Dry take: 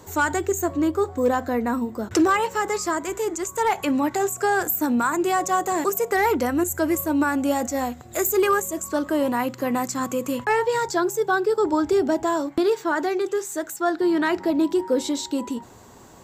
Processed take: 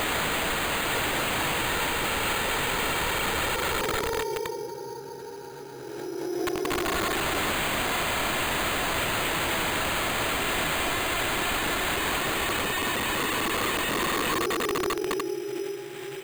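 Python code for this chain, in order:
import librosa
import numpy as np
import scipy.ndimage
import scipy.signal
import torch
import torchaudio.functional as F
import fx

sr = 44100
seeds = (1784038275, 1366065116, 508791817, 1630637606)

p1 = fx.wiener(x, sr, points=41)
p2 = scipy.signal.sosfilt(scipy.signal.butter(2, 390.0, 'highpass', fs=sr, output='sos'), p1)
p3 = fx.peak_eq(p2, sr, hz=1700.0, db=4.0, octaves=0.69)
p4 = fx.paulstretch(p3, sr, seeds[0], factor=46.0, window_s=0.1, from_s=10.78)
p5 = fx.over_compress(p4, sr, threshold_db=-28.0, ratio=-0.5)
p6 = p4 + (p5 * 10.0 ** (2.5 / 20.0))
p7 = fx.graphic_eq_15(p6, sr, hz=(630, 1600, 4000), db=(-5, -6, -11))
p8 = fx.sample_hold(p7, sr, seeds[1], rate_hz=5500.0, jitter_pct=0)
p9 = (np.mod(10.0 ** (24.5 / 20.0) * p8 + 1.0, 2.0) - 1.0) / 10.0 ** (24.5 / 20.0)
p10 = fx.pre_swell(p9, sr, db_per_s=22.0)
y = p10 * 10.0 ** (2.0 / 20.0)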